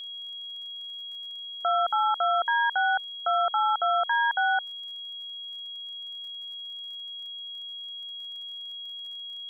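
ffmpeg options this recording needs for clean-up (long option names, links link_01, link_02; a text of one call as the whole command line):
ffmpeg -i in.wav -af "adeclick=threshold=4,bandreject=frequency=3300:width=30" out.wav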